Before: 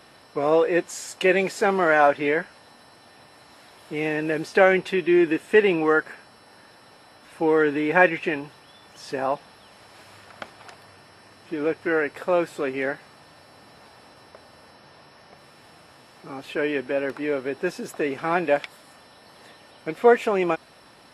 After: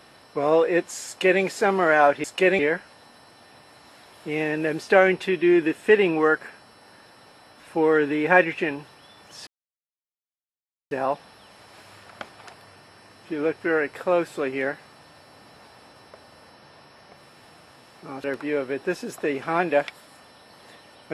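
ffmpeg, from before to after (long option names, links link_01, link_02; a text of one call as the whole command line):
ffmpeg -i in.wav -filter_complex "[0:a]asplit=5[link_01][link_02][link_03][link_04][link_05];[link_01]atrim=end=2.242[link_06];[link_02]atrim=start=1.068:end=1.422[link_07];[link_03]atrim=start=2.238:end=9.12,asetpts=PTS-STARTPTS,afade=type=out:start_time=6.878:duration=0.004:curve=hsin,apad=pad_dur=1.44[link_08];[link_04]atrim=start=9.12:end=16.452,asetpts=PTS-STARTPTS,afade=type=in:duration=0.004:curve=hsin[link_09];[link_05]atrim=start=16.998[link_10];[link_06][link_07]acrossfade=duration=0.004:curve1=hsin:curve2=hsin[link_11];[link_08][link_09]concat=n=2:v=0:a=1[link_12];[link_11][link_12]acrossfade=duration=0.004:curve1=hsin:curve2=hsin[link_13];[link_13][link_10]acrossfade=duration=0.004:curve1=hsin:curve2=hsin" out.wav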